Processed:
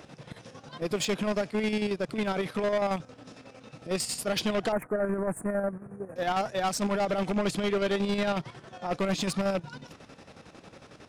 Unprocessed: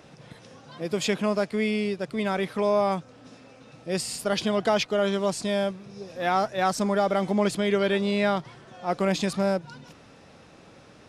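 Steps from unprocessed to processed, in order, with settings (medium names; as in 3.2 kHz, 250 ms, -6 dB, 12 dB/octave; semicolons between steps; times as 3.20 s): rattle on loud lows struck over -30 dBFS, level -30 dBFS; square tremolo 11 Hz, depth 60%, duty 55%; saturation -25.5 dBFS, distortion -8 dB; 4.72–6.16 s: Chebyshev band-stop 1.7–9.3 kHz, order 3; trim +3 dB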